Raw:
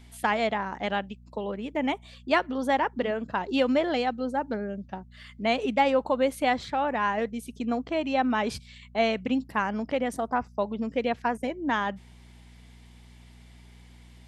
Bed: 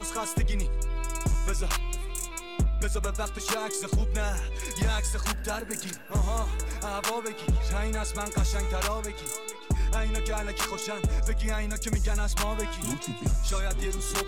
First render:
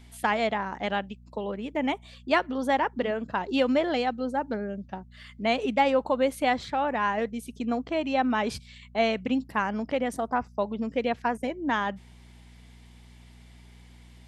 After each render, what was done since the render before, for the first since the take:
no processing that can be heard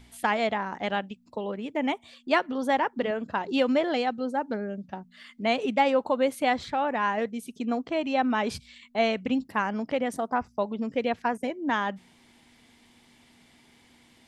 hum removal 60 Hz, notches 3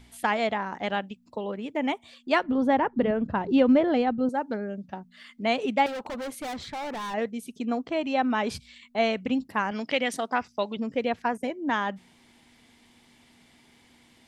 0:02.43–0:04.29: RIAA equalisation playback
0:05.86–0:07.14: gain into a clipping stage and back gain 32 dB
0:09.71–0:10.77: meter weighting curve D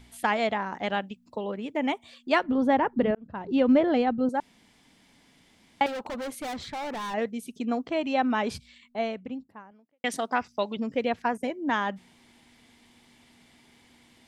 0:03.15–0:03.76: fade in
0:04.40–0:05.81: fill with room tone
0:08.24–0:10.04: fade out and dull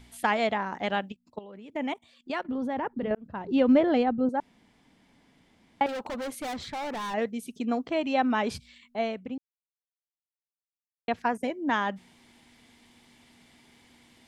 0:01.12–0:03.11: output level in coarse steps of 15 dB
0:04.03–0:05.89: high-shelf EQ 2,500 Hz −10 dB
0:09.38–0:11.08: silence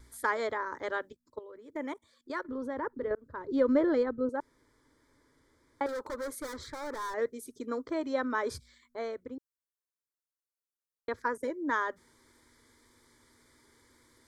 phaser with its sweep stopped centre 740 Hz, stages 6
pitch vibrato 1.8 Hz 14 cents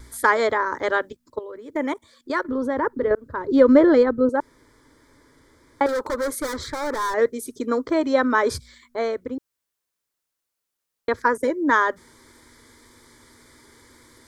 level +12 dB

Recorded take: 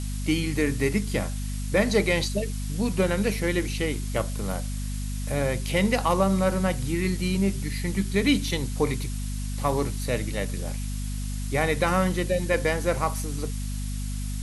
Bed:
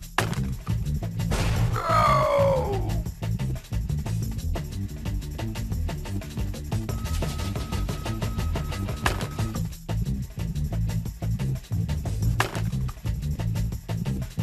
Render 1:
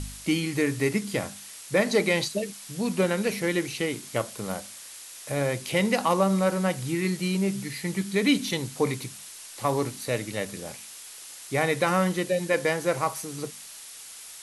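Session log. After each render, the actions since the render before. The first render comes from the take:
hum removal 50 Hz, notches 5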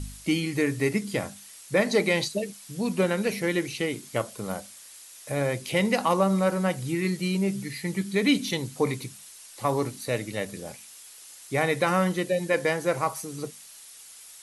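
broadband denoise 6 dB, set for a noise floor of −44 dBFS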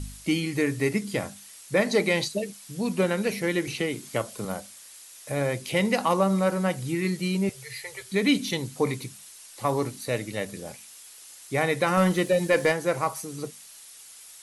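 0:03.67–0:04.45: multiband upward and downward compressor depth 40%
0:07.49–0:08.12: elliptic band-stop filter 120–440 Hz
0:11.97–0:12.72: leveller curve on the samples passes 1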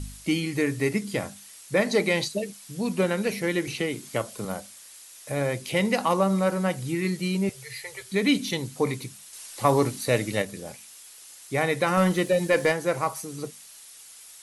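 0:09.33–0:10.42: clip gain +5 dB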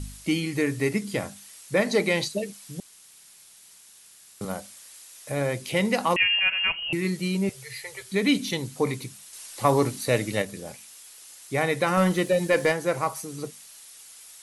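0:02.80–0:04.41: fill with room tone
0:06.16–0:06.93: voice inversion scrambler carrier 3,000 Hz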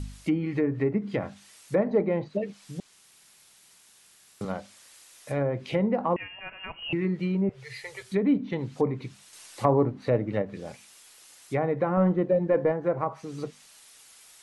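treble cut that deepens with the level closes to 890 Hz, closed at −21 dBFS
high-shelf EQ 4,200 Hz −7.5 dB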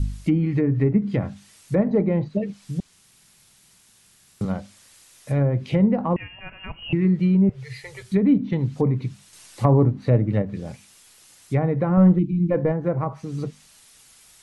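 0:12.19–0:12.51: time-frequency box erased 360–2,100 Hz
bass and treble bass +13 dB, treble +1 dB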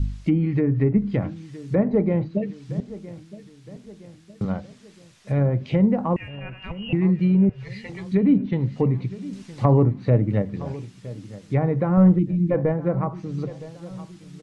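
high-frequency loss of the air 93 metres
repeating echo 965 ms, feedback 48%, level −17 dB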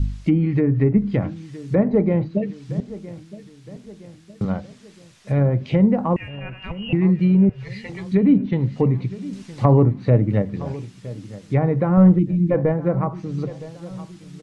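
level +2.5 dB

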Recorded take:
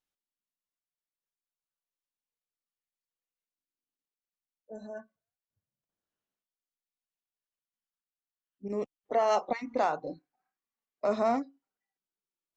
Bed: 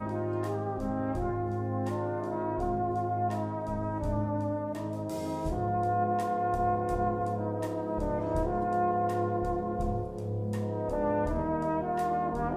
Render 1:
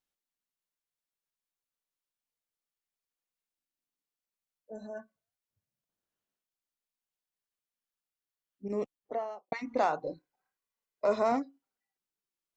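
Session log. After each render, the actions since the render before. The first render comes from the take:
0:08.79–0:09.52: fade out and dull
0:10.04–0:11.32: comb filter 2 ms, depth 42%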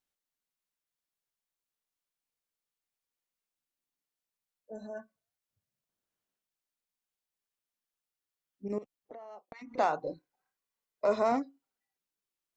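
0:08.78–0:09.78: downward compressor 12 to 1, threshold −43 dBFS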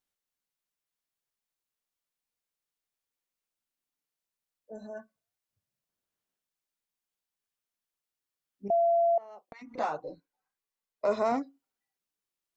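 0:08.70–0:09.18: beep over 680 Hz −21 dBFS
0:09.79–0:11.04: string-ensemble chorus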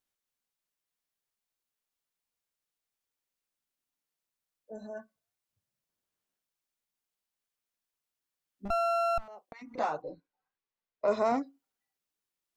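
0:08.65–0:09.28: lower of the sound and its delayed copy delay 0.98 ms
0:10.02–0:11.08: high-frequency loss of the air 160 metres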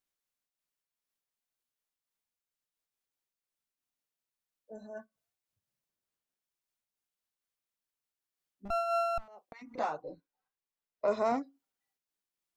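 amplitude modulation by smooth noise, depth 60%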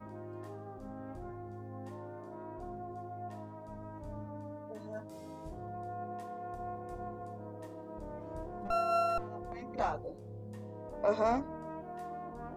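mix in bed −13.5 dB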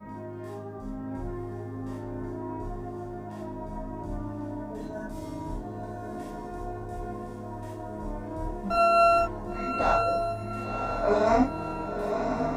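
feedback delay with all-pass diffusion 1,037 ms, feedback 50%, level −5.5 dB
reverb whose tail is shaped and stops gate 110 ms flat, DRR −7 dB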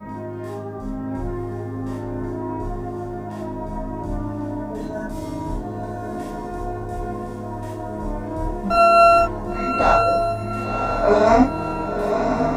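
level +8 dB
brickwall limiter −2 dBFS, peak gain reduction 1 dB

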